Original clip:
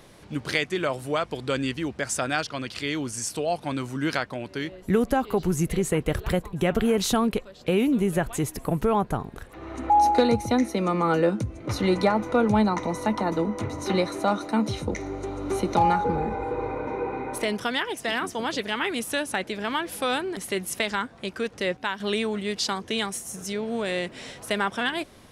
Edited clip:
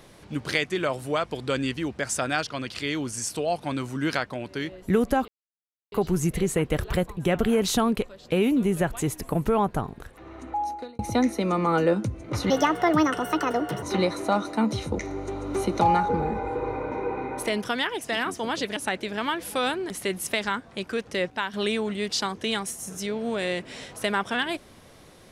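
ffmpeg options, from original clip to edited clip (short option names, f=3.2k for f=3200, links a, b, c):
-filter_complex "[0:a]asplit=6[a][b][c][d][e][f];[a]atrim=end=5.28,asetpts=PTS-STARTPTS,afade=t=out:st=5.276:d=0.004:c=hsin,apad=pad_dur=0.64[g];[b]atrim=start=5.28:end=10.35,asetpts=PTS-STARTPTS,afade=t=in:d=0.004:c=hsin,afade=t=out:st=3.87:d=1.2[h];[c]atrim=start=10.35:end=11.864,asetpts=PTS-STARTPTS,afade=t=in:d=0.004:c=hsin[i];[d]atrim=start=11.86:end=13.78,asetpts=PTS-STARTPTS,asetrate=63945,aresample=44100,atrim=end_sample=58394,asetpts=PTS-STARTPTS[j];[e]atrim=start=13.776:end=18.722[k];[f]atrim=start=19.228[l];[g][h][i]concat=n=3:v=0:a=1[m];[m][j]acrossfade=d=0.004:c1=hsin:c2=hsin[n];[n][k]acrossfade=d=0.004:c1=hsin:c2=hsin[o];[o][l]acrossfade=d=0.004:c1=hsin:c2=hsin"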